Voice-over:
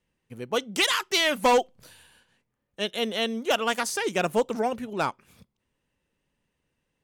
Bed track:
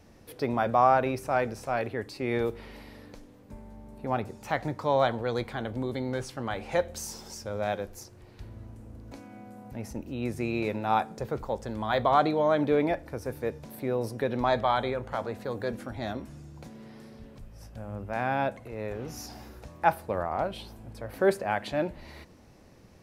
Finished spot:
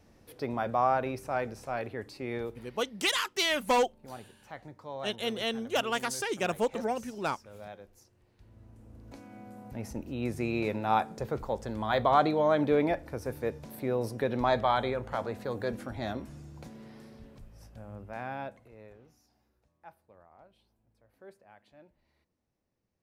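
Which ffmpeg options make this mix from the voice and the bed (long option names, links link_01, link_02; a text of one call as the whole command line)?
ffmpeg -i stem1.wav -i stem2.wav -filter_complex "[0:a]adelay=2250,volume=-5dB[link_01];[1:a]volume=9.5dB,afade=type=out:start_time=2.13:duration=0.78:silence=0.298538,afade=type=in:start_time=8.39:duration=1.11:silence=0.188365,afade=type=out:start_time=16.62:duration=2.57:silence=0.0446684[link_02];[link_01][link_02]amix=inputs=2:normalize=0" out.wav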